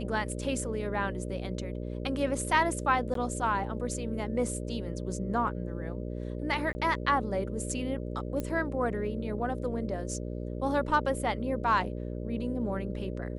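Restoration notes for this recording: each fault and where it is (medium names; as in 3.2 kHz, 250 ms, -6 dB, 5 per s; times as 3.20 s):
buzz 60 Hz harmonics 10 -36 dBFS
3.14–3.15 s: dropout 13 ms
6.73–6.75 s: dropout 20 ms
8.40 s: pop -20 dBFS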